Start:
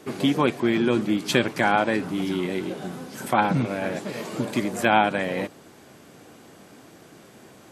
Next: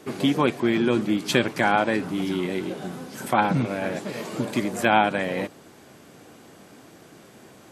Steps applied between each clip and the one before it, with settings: nothing audible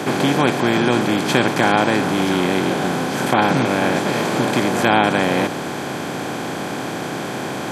per-bin compression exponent 0.4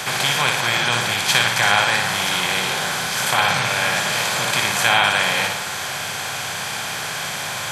passive tone stack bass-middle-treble 10-0-10; on a send: flutter echo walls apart 10.1 m, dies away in 0.65 s; on the sum: gain +7.5 dB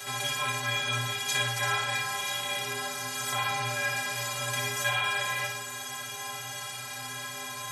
high shelf 9200 Hz +6.5 dB; metallic resonator 120 Hz, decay 0.49 s, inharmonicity 0.03

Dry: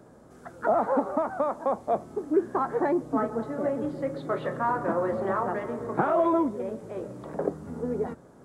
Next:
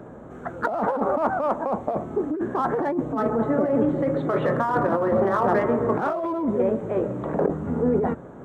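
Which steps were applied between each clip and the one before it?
Wiener smoothing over 9 samples; negative-ratio compressor -30 dBFS, ratio -1; gain +8 dB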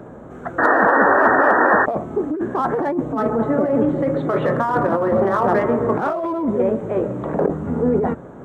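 painted sound noise, 0.58–1.86, 250–1900 Hz -19 dBFS; gain +3.5 dB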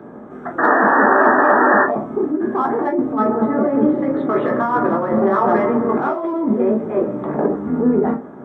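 reverb RT60 0.30 s, pre-delay 16 ms, DRR 2.5 dB; gain -9 dB

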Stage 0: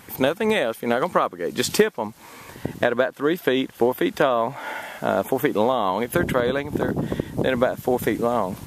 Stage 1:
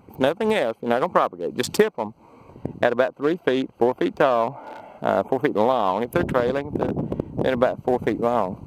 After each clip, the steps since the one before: Wiener smoothing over 25 samples; dynamic EQ 850 Hz, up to +4 dB, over -31 dBFS, Q 0.9; gain -1 dB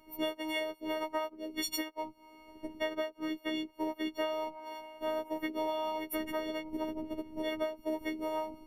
frequency quantiser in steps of 4 st; compressor 2:1, threshold -27 dBFS, peak gain reduction 9.5 dB; robotiser 312 Hz; gain -7 dB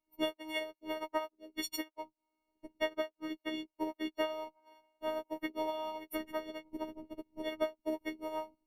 upward expander 2.5:1, over -51 dBFS; gain +2.5 dB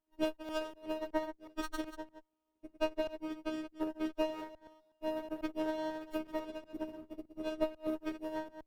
reverse delay 0.123 s, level -10.5 dB; running maximum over 17 samples; gain -1.5 dB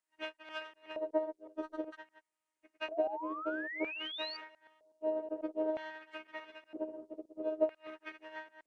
LFO band-pass square 0.52 Hz 510–2000 Hz; painted sound rise, 2.91–4.37, 630–4700 Hz -49 dBFS; gain +7 dB; Nellymoser 44 kbps 22050 Hz

